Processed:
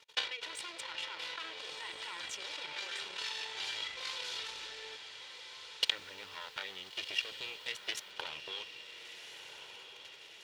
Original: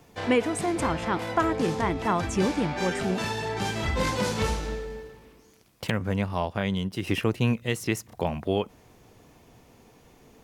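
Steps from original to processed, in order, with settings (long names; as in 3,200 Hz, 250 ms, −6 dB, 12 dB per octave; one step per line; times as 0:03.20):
lower of the sound and its delayed copy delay 2.1 ms
output level in coarse steps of 19 dB
transient designer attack +11 dB, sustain −11 dB
resonant band-pass 3,500 Hz, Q 2.2
0:05.85–0:08.10: background noise white −79 dBFS
feedback delay with all-pass diffusion 1,401 ms, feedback 56%, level −9.5 dB
level +8.5 dB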